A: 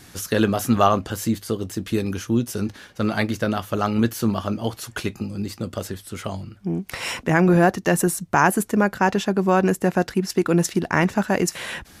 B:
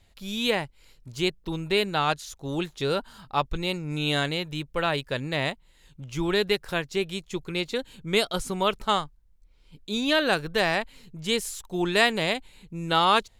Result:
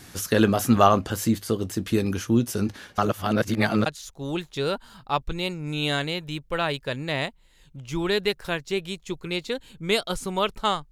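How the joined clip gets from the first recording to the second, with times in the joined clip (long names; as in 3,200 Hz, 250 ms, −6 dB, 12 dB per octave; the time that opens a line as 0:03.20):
A
0:02.98–0:03.86: reverse
0:03.86: continue with B from 0:02.10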